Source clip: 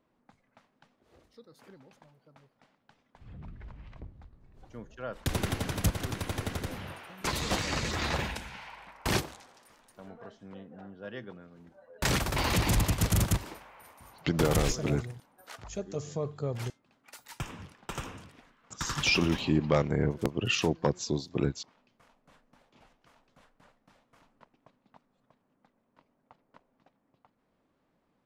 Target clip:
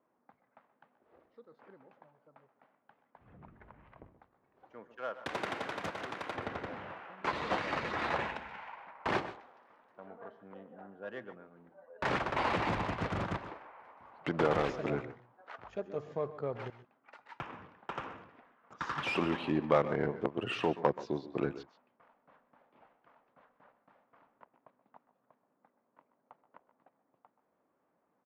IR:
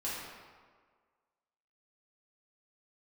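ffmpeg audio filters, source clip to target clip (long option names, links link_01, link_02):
-filter_complex "[0:a]acrossover=split=1400[link_01][link_02];[link_02]asoftclip=type=tanh:threshold=-32dB[link_03];[link_01][link_03]amix=inputs=2:normalize=0,adynamicsmooth=sensitivity=5:basefreq=1800,bandpass=frequency=1200:width_type=q:width=0.52:csg=0,asettb=1/sr,asplit=3[link_04][link_05][link_06];[link_04]atrim=end=4.184[link_07];[link_05]atrim=start=4.18:end=6.35,asetpts=PTS-STARTPTS,afade=type=in:duration=0.004:curve=qsin,afade=type=out:start_time=2.166:duration=0.004:curve=qsin,aemphasis=mode=production:type=bsi[link_08];[link_06]atrim=start=6.346[link_09];[link_07][link_08]acrossfade=duration=0.004:curve1=hsin:curve2=qsin[link_10];[link_10][link_09]acrossfade=duration=0.004:curve1=qsin:curve2=hsin,aecho=1:1:128|145:0.158|0.112,volume=2.5dB"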